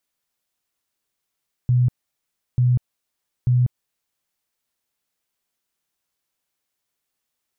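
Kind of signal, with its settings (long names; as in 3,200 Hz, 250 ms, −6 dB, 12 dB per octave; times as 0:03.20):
tone bursts 124 Hz, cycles 24, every 0.89 s, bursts 3, −13.5 dBFS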